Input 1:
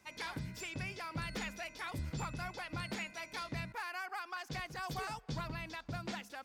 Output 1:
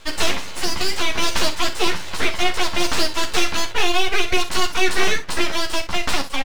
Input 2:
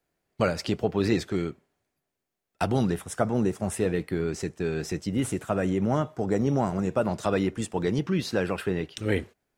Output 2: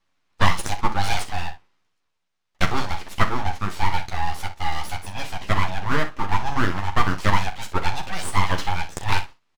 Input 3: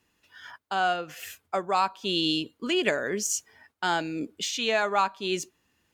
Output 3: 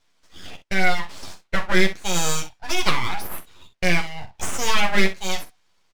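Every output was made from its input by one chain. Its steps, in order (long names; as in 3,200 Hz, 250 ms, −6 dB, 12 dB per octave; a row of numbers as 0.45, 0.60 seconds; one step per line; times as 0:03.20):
Chebyshev band-pass filter 430–4,900 Hz, order 3
full-wave rectification
ambience of single reflections 11 ms −4.5 dB, 40 ms −12 dB, 63 ms −12.5 dB
normalise the peak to −1.5 dBFS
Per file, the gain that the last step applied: +24.5, +9.0, +7.0 decibels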